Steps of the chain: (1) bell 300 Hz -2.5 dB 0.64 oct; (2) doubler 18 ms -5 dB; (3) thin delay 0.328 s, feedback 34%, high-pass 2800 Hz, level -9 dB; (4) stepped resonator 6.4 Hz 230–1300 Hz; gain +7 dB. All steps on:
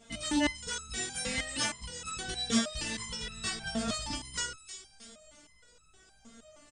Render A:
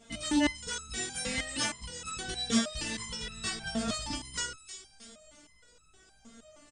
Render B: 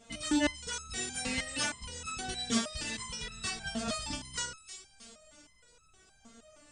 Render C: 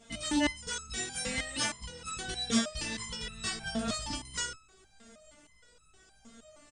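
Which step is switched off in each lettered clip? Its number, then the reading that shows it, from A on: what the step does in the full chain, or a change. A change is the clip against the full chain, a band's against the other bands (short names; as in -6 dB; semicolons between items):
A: 1, 250 Hz band +1.5 dB; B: 2, loudness change -1.0 LU; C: 3, momentary loudness spread change -7 LU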